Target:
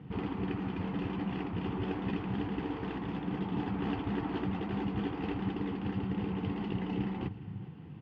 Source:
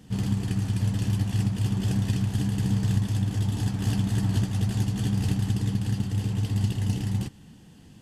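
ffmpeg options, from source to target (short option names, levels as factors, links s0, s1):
-filter_complex "[0:a]highpass=110,equalizer=f=150:t=q:w=4:g=4,equalizer=f=230:t=q:w=4:g=-9,equalizer=f=610:t=q:w=4:g=-9,equalizer=f=1700:t=q:w=4:g=-9,lowpass=f=2200:w=0.5412,lowpass=f=2200:w=1.3066,asplit=2[s0][s1];[s1]aecho=0:1:412:0.112[s2];[s0][s2]amix=inputs=2:normalize=0,afftfilt=real='re*lt(hypot(re,im),0.2)':imag='im*lt(hypot(re,im),0.2)':win_size=1024:overlap=0.75,volume=1.78"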